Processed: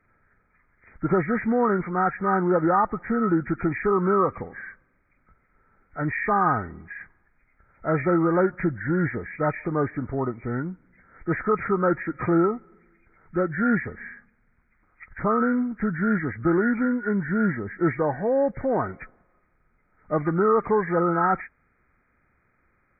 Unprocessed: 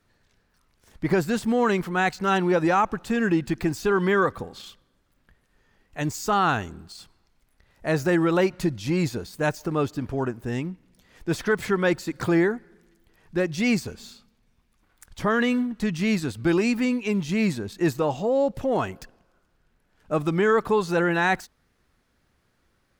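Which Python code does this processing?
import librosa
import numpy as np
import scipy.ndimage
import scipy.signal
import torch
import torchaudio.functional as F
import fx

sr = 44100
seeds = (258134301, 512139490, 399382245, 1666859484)

y = fx.freq_compress(x, sr, knee_hz=1200.0, ratio=4.0)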